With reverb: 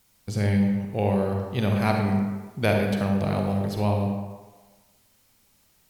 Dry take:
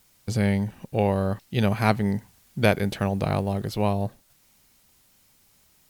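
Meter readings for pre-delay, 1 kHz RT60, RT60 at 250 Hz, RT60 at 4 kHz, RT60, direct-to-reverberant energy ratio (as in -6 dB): 39 ms, 1.4 s, 1.2 s, 0.80 s, 1.3 s, 1.5 dB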